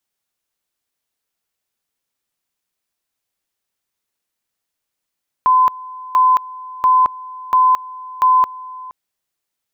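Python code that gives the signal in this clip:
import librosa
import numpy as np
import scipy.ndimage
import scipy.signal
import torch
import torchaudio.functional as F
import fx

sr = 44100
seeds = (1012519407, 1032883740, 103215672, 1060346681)

y = fx.two_level_tone(sr, hz=1020.0, level_db=-8.5, drop_db=20.5, high_s=0.22, low_s=0.47, rounds=5)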